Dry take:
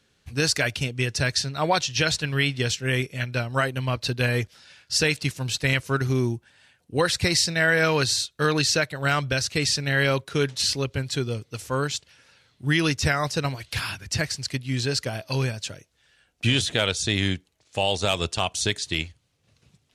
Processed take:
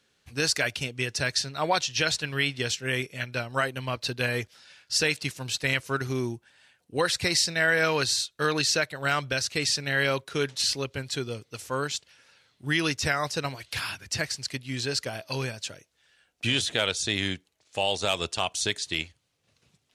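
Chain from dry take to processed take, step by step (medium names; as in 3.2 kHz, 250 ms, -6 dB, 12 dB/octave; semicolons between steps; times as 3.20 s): bass shelf 190 Hz -9.5 dB; trim -2 dB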